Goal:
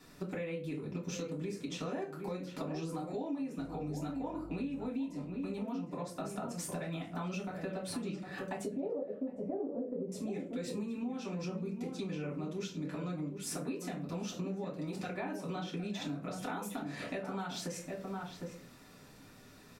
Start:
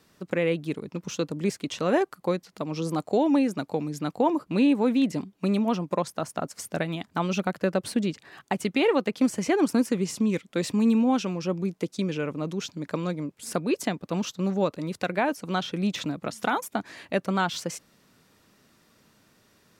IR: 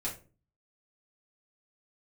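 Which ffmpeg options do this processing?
-filter_complex "[0:a]alimiter=limit=-22dB:level=0:latency=1:release=272,asettb=1/sr,asplit=3[link_01][link_02][link_03];[link_01]atrim=end=8.644[link_04];[link_02]atrim=start=8.64:end=10.12,asetpts=PTS-STARTPTS,afade=type=in:duration=0.004:curve=qsin,afade=type=out:start_time=1.476:duration=0.004:curve=qsin,lowpass=frequency=570:width_type=q:width=4.9[link_05];[link_03]atrim=start=10.116[link_06];[link_04][link_05]acrossfade=duration=0.004:curve1=hsin:curve2=qsin[link_07];[link_07][link_06]acrossfade=duration=0.004:curve1=qsin:curve2=hsin[link_08];[1:a]atrim=start_sample=2205[link_09];[link_08][link_09]afir=irnorm=-1:irlink=0,asettb=1/sr,asplit=3[link_10][link_11][link_12];[link_10]atrim=end=3.584[link_13];[link_11]atrim=start=3.58:end=4.89,asetpts=PTS-STARTPTS,afade=type=in:duration=0.004:curve=qsin,afade=type=out:start_time=1.306:duration=0.004:curve=qsin,aeval=exprs='val(0)+0.00631*(sin(2*PI*50*n/s)+sin(2*PI*2*50*n/s)/2+sin(2*PI*3*50*n/s)/3+sin(2*PI*4*50*n/s)/4+sin(2*PI*5*50*n/s)/5)':channel_layout=same[link_14];[link_12]atrim=start=4.886[link_15];[link_13][link_14]acrossfade=duration=0.004:curve1=hsin:curve2=qsin[link_16];[link_16][link_15]acrossfade=duration=0.004:curve1=qsin:curve2=hsin,asplit=2[link_17][link_18];[link_18]adelay=758,volume=-9dB,highshelf=frequency=4000:gain=-17.1[link_19];[link_17][link_19]amix=inputs=2:normalize=0,acompressor=threshold=-38dB:ratio=6,volume=1.5dB"

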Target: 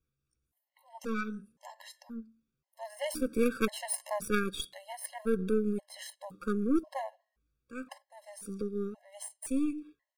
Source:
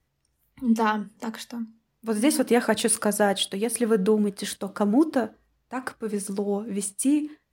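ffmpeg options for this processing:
ffmpeg -i in.wav -af "aeval=exprs='0.422*(cos(1*acos(clip(val(0)/0.422,-1,1)))-cos(1*PI/2))+0.15*(cos(3*acos(clip(val(0)/0.422,-1,1)))-cos(3*PI/2))+0.0335*(cos(5*acos(clip(val(0)/0.422,-1,1)))-cos(5*PI/2))+0.0188*(cos(6*acos(clip(val(0)/0.422,-1,1)))-cos(6*PI/2))':channel_layout=same,atempo=0.74,afftfilt=real='re*gt(sin(2*PI*0.95*pts/sr)*(1-2*mod(floor(b*sr/1024/550),2)),0)':imag='im*gt(sin(2*PI*0.95*pts/sr)*(1-2*mod(floor(b*sr/1024/550),2)),0)':win_size=1024:overlap=0.75" out.wav

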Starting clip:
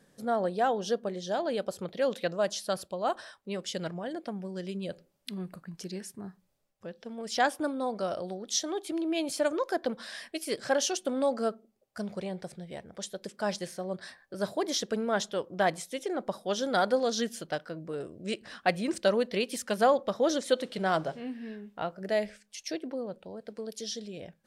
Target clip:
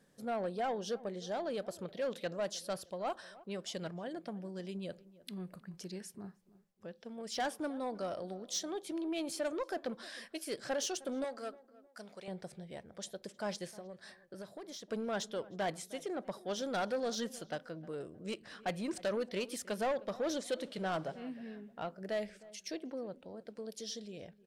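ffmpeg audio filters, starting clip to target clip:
ffmpeg -i in.wav -filter_complex "[0:a]asoftclip=type=tanh:threshold=-23.5dB,asettb=1/sr,asplit=3[link_01][link_02][link_03];[link_01]atrim=end=11.244[link_04];[link_02]atrim=start=11.24:end=12.28,asetpts=PTS-STARTPTS,afade=type=in:duration=0.004:curve=qsin,afade=type=out:start_time=1.036:duration=0.004:curve=qsin,highpass=frequency=870:poles=1[link_05];[link_03]atrim=start=12.276[link_06];[link_04][link_05]acrossfade=duration=0.004:curve1=hsin:curve2=qsin[link_07];[link_07][link_06]acrossfade=duration=0.004:curve1=qsin:curve2=hsin,asplit=3[link_08][link_09][link_10];[link_08]afade=type=out:start_time=13.7:duration=0.02[link_11];[link_09]acompressor=threshold=-40dB:ratio=6,afade=type=in:start_time=13.7:duration=0.02,afade=type=out:start_time=14.89:duration=0.02[link_12];[link_10]afade=type=in:start_time=14.89:duration=0.02[link_13];[link_11][link_12][link_13]amix=inputs=3:normalize=0,asplit=2[link_14][link_15];[link_15]adelay=310,lowpass=frequency=1400:poles=1,volume=-19dB,asplit=2[link_16][link_17];[link_17]adelay=310,lowpass=frequency=1400:poles=1,volume=0.39,asplit=2[link_18][link_19];[link_19]adelay=310,lowpass=frequency=1400:poles=1,volume=0.39[link_20];[link_14][link_16][link_18][link_20]amix=inputs=4:normalize=0,volume=-5.5dB" out.wav

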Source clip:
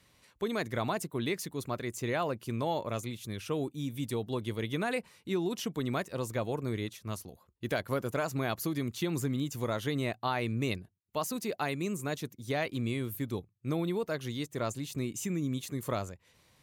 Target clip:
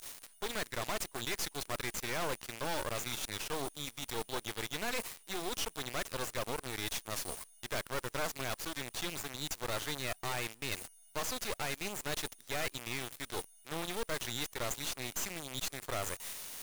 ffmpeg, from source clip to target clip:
ffmpeg -i in.wav -filter_complex "[0:a]agate=range=-33dB:threshold=-60dB:ratio=3:detection=peak,aeval=exprs='val(0)+0.00282*sin(2*PI*9400*n/s)':channel_layout=same,highshelf=frequency=2100:gain=6,areverse,acompressor=threshold=-42dB:ratio=16,areverse,acrossover=split=400 8000:gain=0.0631 1 0.126[link_01][link_02][link_03];[link_01][link_02][link_03]amix=inputs=3:normalize=0,aeval=exprs='0.02*(cos(1*acos(clip(val(0)/0.02,-1,1)))-cos(1*PI/2))+0.000891*(cos(3*acos(clip(val(0)/0.02,-1,1)))-cos(3*PI/2))+0.00794*(cos(5*acos(clip(val(0)/0.02,-1,1)))-cos(5*PI/2))+0.00316*(cos(7*acos(clip(val(0)/0.02,-1,1)))-cos(7*PI/2))+0.01*(cos(8*acos(clip(val(0)/0.02,-1,1)))-cos(8*PI/2))':channel_layout=same,acrusher=bits=8:dc=4:mix=0:aa=0.000001,volume=4dB" out.wav

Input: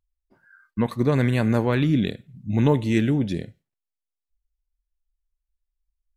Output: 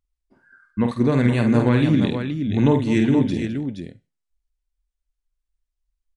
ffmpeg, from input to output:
ffmpeg -i in.wav -filter_complex "[0:a]equalizer=frequency=260:width=3.6:gain=4.5,asplit=2[link_01][link_02];[link_02]aecho=0:1:50|209|473:0.501|0.2|0.447[link_03];[link_01][link_03]amix=inputs=2:normalize=0,aresample=22050,aresample=44100" out.wav

